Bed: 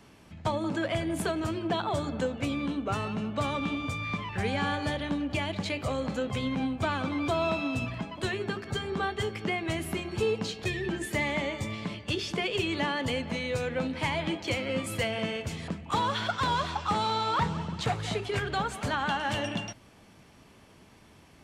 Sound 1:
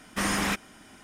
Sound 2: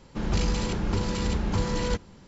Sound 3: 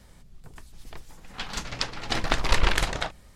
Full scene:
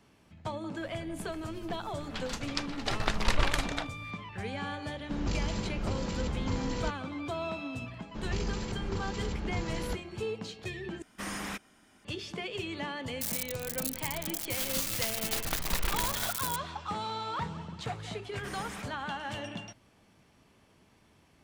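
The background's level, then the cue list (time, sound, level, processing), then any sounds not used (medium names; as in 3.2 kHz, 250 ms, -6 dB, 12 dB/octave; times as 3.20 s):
bed -7.5 dB
0.76 s: add 3 -5.5 dB
4.94 s: add 2 -7 dB
7.99 s: add 2 -8.5 dB
11.02 s: replace with 1 -10.5 dB
13.21 s: add 3 -11 dB + zero-crossing glitches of -12 dBFS
18.27 s: add 1 -16 dB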